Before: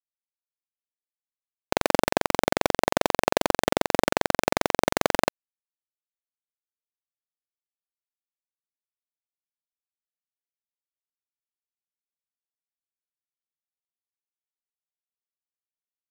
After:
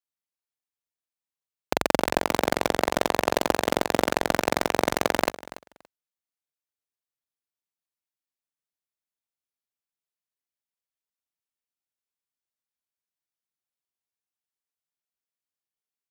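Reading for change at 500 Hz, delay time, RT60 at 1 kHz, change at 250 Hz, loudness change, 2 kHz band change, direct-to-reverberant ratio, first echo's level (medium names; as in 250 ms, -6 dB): 0.0 dB, 285 ms, no reverb, 0.0 dB, 0.0 dB, 0.0 dB, no reverb, -17.0 dB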